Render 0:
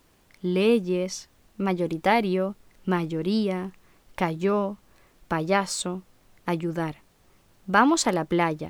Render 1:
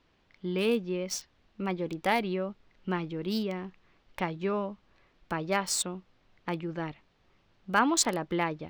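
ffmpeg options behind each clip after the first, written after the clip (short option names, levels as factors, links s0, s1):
-filter_complex "[0:a]highshelf=f=2900:g=9,acrossover=split=4300[s0][s1];[s1]acrusher=bits=4:mix=0:aa=0.5[s2];[s0][s2]amix=inputs=2:normalize=0,volume=0.447"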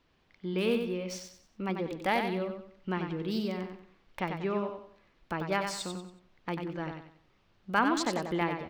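-filter_complex "[0:a]acrossover=split=4300[s0][s1];[s1]acompressor=threshold=0.00891:ratio=4:attack=1:release=60[s2];[s0][s2]amix=inputs=2:normalize=0,aecho=1:1:93|186|279|372:0.501|0.17|0.0579|0.0197,volume=0.794"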